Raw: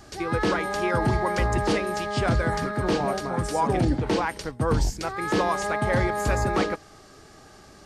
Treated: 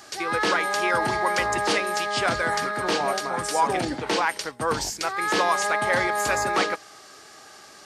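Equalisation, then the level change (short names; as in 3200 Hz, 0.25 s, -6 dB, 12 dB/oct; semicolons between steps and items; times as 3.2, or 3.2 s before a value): HPF 1100 Hz 6 dB/oct; +7.0 dB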